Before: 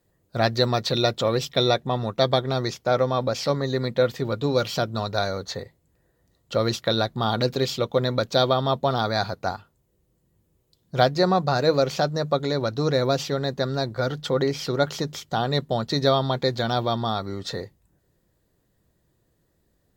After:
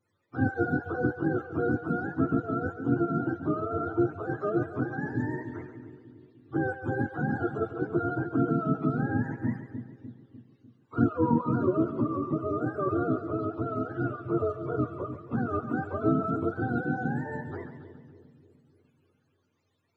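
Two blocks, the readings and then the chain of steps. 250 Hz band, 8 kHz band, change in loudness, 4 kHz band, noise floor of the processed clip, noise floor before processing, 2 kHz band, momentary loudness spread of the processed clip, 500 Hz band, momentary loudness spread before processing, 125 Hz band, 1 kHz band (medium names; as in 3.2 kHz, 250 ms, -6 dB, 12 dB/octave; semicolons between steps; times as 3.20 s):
+1.0 dB, under -30 dB, -5.5 dB, under -35 dB, -72 dBFS, -69 dBFS, -4.0 dB, 11 LU, -9.0 dB, 7 LU, -5.0 dB, -8.0 dB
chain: spectrum inverted on a logarithmic axis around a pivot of 420 Hz; two-band feedback delay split 470 Hz, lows 299 ms, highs 139 ms, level -10 dB; trim -4.5 dB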